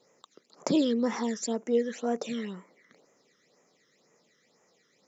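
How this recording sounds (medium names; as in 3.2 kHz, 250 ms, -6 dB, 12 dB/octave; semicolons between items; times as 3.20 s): phasing stages 12, 2 Hz, lowest notch 770–4100 Hz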